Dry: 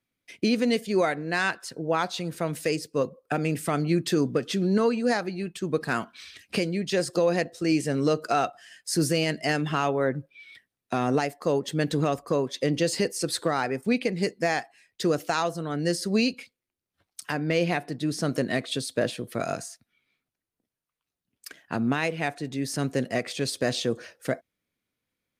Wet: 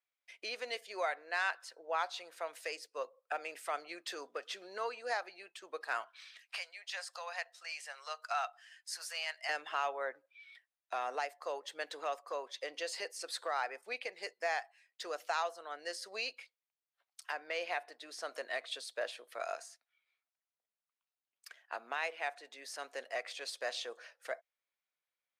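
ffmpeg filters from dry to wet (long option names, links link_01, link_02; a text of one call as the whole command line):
ffmpeg -i in.wav -filter_complex "[0:a]asettb=1/sr,asplit=3[link_01][link_02][link_03];[link_01]atrim=end=6.424[link_04];[link_02]atrim=start=6.42:end=9.49,asetpts=PTS-STARTPTS,afade=type=in:duration=0.004:curve=qsin,afade=type=out:start_time=3.066:duration=0.004:curve=qsin,highpass=frequency=790:width=0.5412,highpass=frequency=790:width=1.3066[link_05];[link_03]atrim=start=9.486[link_06];[link_04][link_05]acrossfade=duration=0.004:curve1=hsin:curve2=qsin[link_07];[link_07][link_06]acrossfade=duration=0.004:curve1=qsin:curve2=hsin,highpass=frequency=620:width=0.5412,highpass=frequency=620:width=1.3066,highshelf=frequency=6400:gain=-10,volume=-7dB" out.wav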